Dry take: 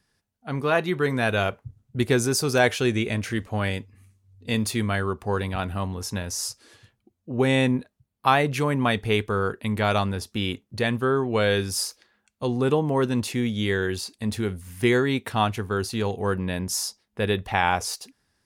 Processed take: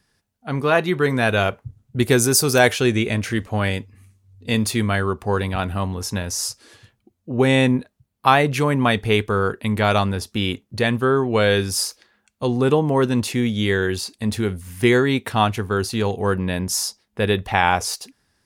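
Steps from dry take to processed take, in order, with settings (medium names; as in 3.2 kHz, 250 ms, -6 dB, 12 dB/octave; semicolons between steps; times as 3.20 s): 2.03–2.73 s: treble shelf 9.2 kHz +11.5 dB; trim +4.5 dB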